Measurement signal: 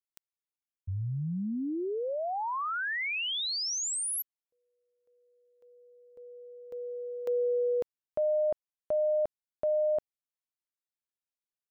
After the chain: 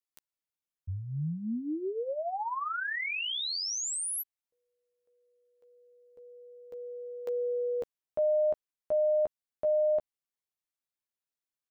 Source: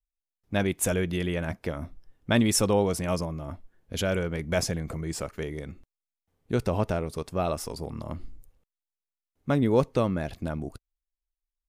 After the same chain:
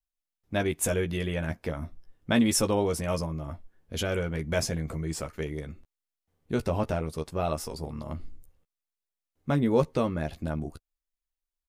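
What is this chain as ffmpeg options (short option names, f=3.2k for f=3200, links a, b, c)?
-filter_complex "[0:a]asplit=2[a][b];[b]adelay=13,volume=-6.5dB[c];[a][c]amix=inputs=2:normalize=0,volume=-2dB"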